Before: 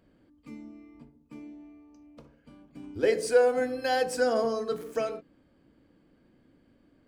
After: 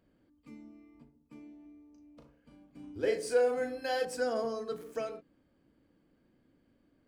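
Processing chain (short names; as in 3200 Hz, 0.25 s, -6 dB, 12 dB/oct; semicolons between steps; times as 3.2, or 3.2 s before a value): 1.62–4.05 doubler 37 ms -6 dB; gain -6.5 dB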